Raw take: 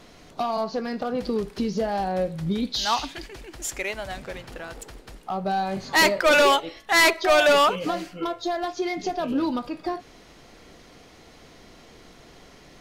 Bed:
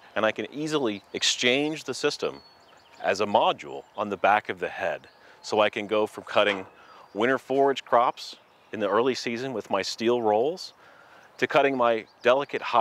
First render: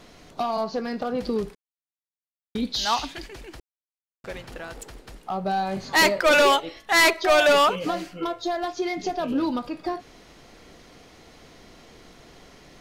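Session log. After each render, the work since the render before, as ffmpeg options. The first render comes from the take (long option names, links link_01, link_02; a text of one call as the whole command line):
ffmpeg -i in.wav -filter_complex "[0:a]asplit=5[link_01][link_02][link_03][link_04][link_05];[link_01]atrim=end=1.55,asetpts=PTS-STARTPTS,afade=type=out:start_time=1.546:duration=0.004:curve=hsin[link_06];[link_02]atrim=start=1.55:end=2.55,asetpts=PTS-STARTPTS,volume=0[link_07];[link_03]atrim=start=2.55:end=3.6,asetpts=PTS-STARTPTS,afade=type=in:duration=0.004:curve=hsin,afade=type=out:start_time=1.046:duration=0.004:curve=hsin[link_08];[link_04]atrim=start=3.6:end=4.24,asetpts=PTS-STARTPTS,volume=0[link_09];[link_05]atrim=start=4.24,asetpts=PTS-STARTPTS,afade=type=in:duration=0.004:curve=hsin[link_10];[link_06][link_07][link_08][link_09][link_10]concat=n=5:v=0:a=1" out.wav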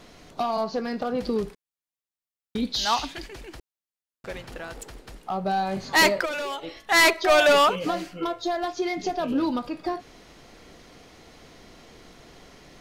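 ffmpeg -i in.wav -filter_complex "[0:a]asplit=3[link_01][link_02][link_03];[link_01]afade=type=out:start_time=6.24:duration=0.02[link_04];[link_02]acompressor=threshold=-29dB:ratio=8:attack=3.2:release=140:knee=1:detection=peak,afade=type=in:start_time=6.24:duration=0.02,afade=type=out:start_time=6.84:duration=0.02[link_05];[link_03]afade=type=in:start_time=6.84:duration=0.02[link_06];[link_04][link_05][link_06]amix=inputs=3:normalize=0" out.wav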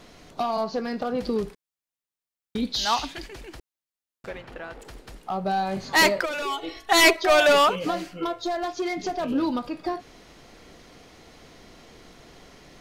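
ffmpeg -i in.wav -filter_complex "[0:a]asettb=1/sr,asplit=3[link_01][link_02][link_03];[link_01]atrim=end=4.294[link_04];[link_02]atrim=start=4.29:end=4.85,asetpts=PTS-STARTPTS,afade=type=in:duration=0.004:curve=qsin,afade=type=out:start_time=0.556:duration=0.004:curve=qsin,bass=frequency=250:gain=-4,treble=frequency=4000:gain=-13[link_05];[link_03]atrim=start=4.846[link_06];[link_04][link_05]acrossfade=duration=0.004:curve1=hsin:curve2=qsin[link_07];[link_07][link_06]acrossfade=duration=0.004:curve1=qsin:curve2=hsin,asettb=1/sr,asplit=3[link_08][link_09][link_10];[link_08]atrim=end=6.424[link_11];[link_09]atrim=start=6.42:end=7.16,asetpts=PTS-STARTPTS,afade=type=in:duration=0.004:curve=qsin,afade=type=out:start_time=0.736:duration=0.004:curve=qsin,aecho=1:1:2.7:0.86,atrim=end_sample=32634[link_12];[link_10]atrim=start=7.156[link_13];[link_11][link_12]acrossfade=duration=0.004:curve1=hsin:curve2=qsin[link_14];[link_14][link_13]acrossfade=duration=0.004:curve1=qsin:curve2=hsin,asettb=1/sr,asplit=3[link_15][link_16][link_17];[link_15]atrim=end=8.354[link_18];[link_16]atrim=start=8.35:end=9.26,asetpts=PTS-STARTPTS,afade=type=in:duration=0.004:curve=qsin,afade=type=out:start_time=0.906:duration=0.004:curve=qsin,asoftclip=type=hard:threshold=-22.5dB[link_19];[link_17]atrim=start=9.256[link_20];[link_18][link_19]acrossfade=duration=0.004:curve1=hsin:curve2=qsin[link_21];[link_21][link_20]acrossfade=duration=0.004:curve1=qsin:curve2=hsin" out.wav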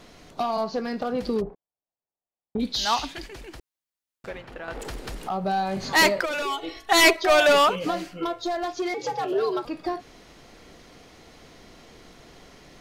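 ffmpeg -i in.wav -filter_complex "[0:a]asplit=3[link_01][link_02][link_03];[link_01]afade=type=out:start_time=1.4:duration=0.02[link_04];[link_02]lowpass=frequency=730:width_type=q:width=2.3,afade=type=in:start_time=1.4:duration=0.02,afade=type=out:start_time=2.59:duration=0.02[link_05];[link_03]afade=type=in:start_time=2.59:duration=0.02[link_06];[link_04][link_05][link_06]amix=inputs=3:normalize=0,asettb=1/sr,asplit=3[link_07][link_08][link_09];[link_07]atrim=end=4.684[link_10];[link_08]atrim=start=4.68:end=6.56,asetpts=PTS-STARTPTS,afade=type=in:duration=0.004:curve=qsin,afade=type=out:start_time=1.876:duration=0.004:curve=qsin,acompressor=mode=upward:threshold=-24dB:ratio=2.5:attack=3.2:release=140:knee=2.83:detection=peak[link_11];[link_09]atrim=start=6.556[link_12];[link_10][link_11]acrossfade=duration=0.004:curve1=hsin:curve2=qsin[link_13];[link_13][link_12]acrossfade=duration=0.004:curve1=qsin:curve2=hsin,asettb=1/sr,asplit=3[link_14][link_15][link_16];[link_14]atrim=end=8.944[link_17];[link_15]atrim=start=8.94:end=9.65,asetpts=PTS-STARTPTS,afade=type=in:duration=0.004:curve=qsin,afade=type=out:start_time=0.706:duration=0.004:curve=qsin,afreqshift=120[link_18];[link_16]atrim=start=9.646[link_19];[link_17][link_18]acrossfade=duration=0.004:curve1=hsin:curve2=qsin[link_20];[link_20][link_19]acrossfade=duration=0.004:curve1=qsin:curve2=hsin" out.wav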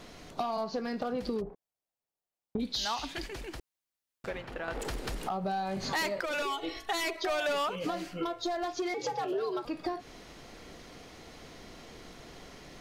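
ffmpeg -i in.wav -af "alimiter=limit=-15dB:level=0:latency=1:release=77,acompressor=threshold=-31dB:ratio=4" out.wav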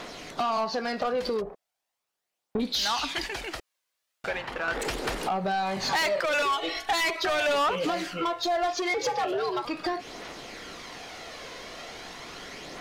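ffmpeg -i in.wav -filter_complex "[0:a]aphaser=in_gain=1:out_gain=1:delay=2:decay=0.33:speed=0.39:type=triangular,asplit=2[link_01][link_02];[link_02]highpass=frequency=720:poles=1,volume=17dB,asoftclip=type=tanh:threshold=-17.5dB[link_03];[link_01][link_03]amix=inputs=2:normalize=0,lowpass=frequency=5700:poles=1,volume=-6dB" out.wav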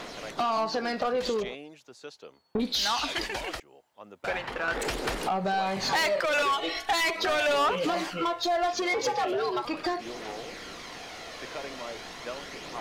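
ffmpeg -i in.wav -i bed.wav -filter_complex "[1:a]volume=-18.5dB[link_01];[0:a][link_01]amix=inputs=2:normalize=0" out.wav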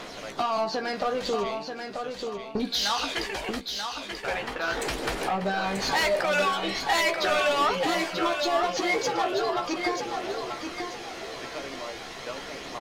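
ffmpeg -i in.wav -filter_complex "[0:a]asplit=2[link_01][link_02];[link_02]adelay=15,volume=-7.5dB[link_03];[link_01][link_03]amix=inputs=2:normalize=0,aecho=1:1:936|1872|2808|3744:0.501|0.17|0.0579|0.0197" out.wav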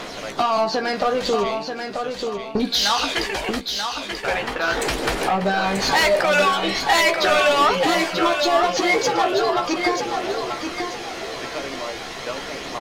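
ffmpeg -i in.wav -af "volume=7dB" out.wav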